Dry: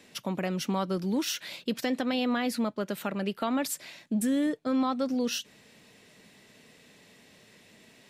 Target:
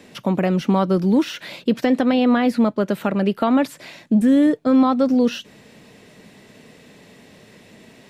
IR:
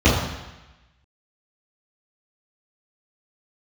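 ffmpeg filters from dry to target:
-filter_complex "[0:a]tiltshelf=f=1.4k:g=4,acrossover=split=3600[a][b];[b]acompressor=threshold=-49dB:ratio=4:attack=1:release=60[c];[a][c]amix=inputs=2:normalize=0,volume=8.5dB"

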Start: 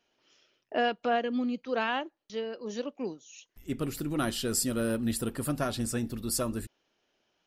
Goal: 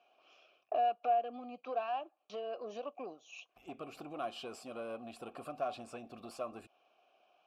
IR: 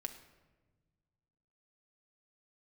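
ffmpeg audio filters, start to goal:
-filter_complex "[0:a]acompressor=threshold=-39dB:ratio=6,aeval=exprs='(tanh(56.2*val(0)+0.25)-tanh(0.25))/56.2':c=same,asplit=3[a][b][c];[a]bandpass=f=730:t=q:w=8,volume=0dB[d];[b]bandpass=f=1.09k:t=q:w=8,volume=-6dB[e];[c]bandpass=f=2.44k:t=q:w=8,volume=-9dB[f];[d][e][f]amix=inputs=3:normalize=0,volume=17dB"

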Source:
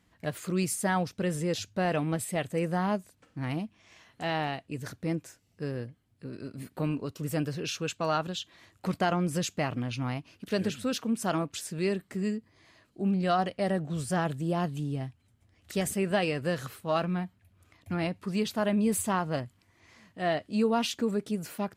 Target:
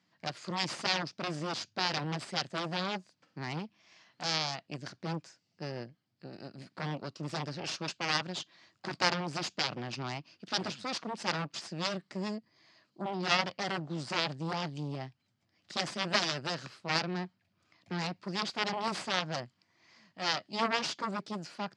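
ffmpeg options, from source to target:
-af "acontrast=22,aeval=exprs='0.316*(cos(1*acos(clip(val(0)/0.316,-1,1)))-cos(1*PI/2))+0.141*(cos(3*acos(clip(val(0)/0.316,-1,1)))-cos(3*PI/2))+0.0251*(cos(8*acos(clip(val(0)/0.316,-1,1)))-cos(8*PI/2))':c=same,highpass=f=140:w=0.5412,highpass=f=140:w=1.3066,equalizer=f=260:t=q:w=4:g=-5,equalizer=f=440:t=q:w=4:g=-7,equalizer=f=4.8k:t=q:w=4:g=9,lowpass=f=6.6k:w=0.5412,lowpass=f=6.6k:w=1.3066"

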